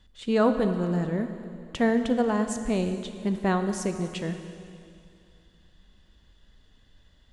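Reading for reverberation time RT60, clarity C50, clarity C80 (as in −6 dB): 2.5 s, 8.5 dB, 9.0 dB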